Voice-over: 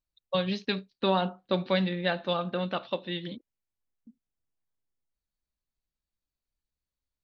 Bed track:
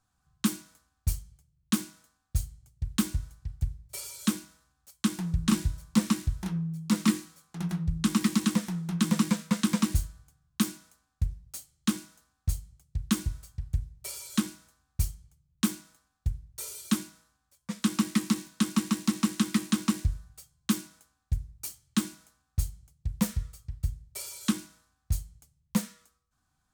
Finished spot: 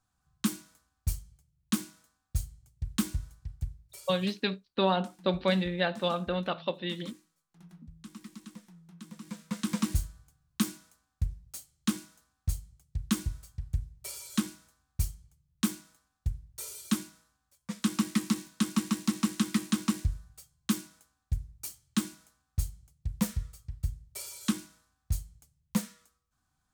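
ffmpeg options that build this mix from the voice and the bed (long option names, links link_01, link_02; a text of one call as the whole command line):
ffmpeg -i stem1.wav -i stem2.wav -filter_complex "[0:a]adelay=3750,volume=-0.5dB[link_01];[1:a]volume=17dB,afade=type=out:start_time=3.36:duration=0.95:silence=0.112202,afade=type=in:start_time=9.21:duration=0.76:silence=0.105925[link_02];[link_01][link_02]amix=inputs=2:normalize=0" out.wav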